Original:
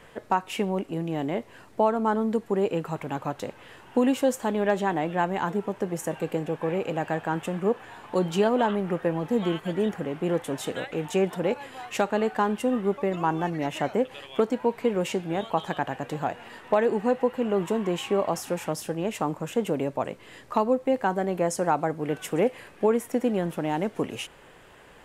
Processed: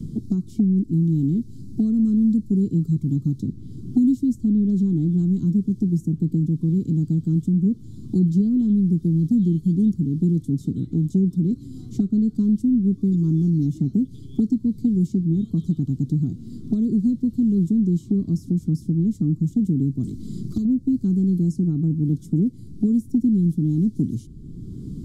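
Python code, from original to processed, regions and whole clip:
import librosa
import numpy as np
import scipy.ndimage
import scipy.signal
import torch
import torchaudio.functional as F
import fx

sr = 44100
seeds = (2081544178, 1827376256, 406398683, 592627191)

y = fx.chain(x, sr, fx.env_flanger(rest_ms=6.9, full_db=-20.0),
    fx.spectral_comp(ratio=2.0), at=(20.03, 20.65))
y = scipy.signal.sosfilt(scipy.signal.cheby2(4, 40, [520.0, 2800.0], 'bandstop', fs=sr, output='sos'), y)
y = fx.bass_treble(y, sr, bass_db=12, treble_db=-15)
y = fx.band_squash(y, sr, depth_pct=70)
y = F.gain(torch.from_numpy(y), 4.0).numpy()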